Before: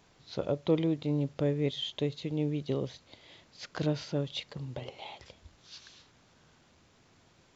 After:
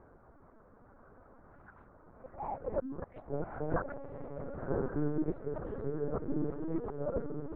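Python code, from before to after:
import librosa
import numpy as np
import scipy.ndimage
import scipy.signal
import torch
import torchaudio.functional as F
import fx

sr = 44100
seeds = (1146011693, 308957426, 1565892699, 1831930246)

y = np.flip(x).copy()
y = fx.dereverb_blind(y, sr, rt60_s=0.52)
y = scipy.signal.sosfilt(scipy.signal.ellip(3, 1.0, 40, [220.0, 1400.0], 'bandpass', fs=sr, output='sos'), y)
y = fx.over_compress(y, sr, threshold_db=-38.0, ratio=-1.0)
y = fx.air_absorb(y, sr, metres=270.0)
y = fx.echo_diffused(y, sr, ms=1063, feedback_pct=51, wet_db=-5)
y = fx.lpc_vocoder(y, sr, seeds[0], excitation='pitch_kept', order=8)
y = fx.attack_slew(y, sr, db_per_s=270.0)
y = F.gain(torch.from_numpy(y), 5.5).numpy()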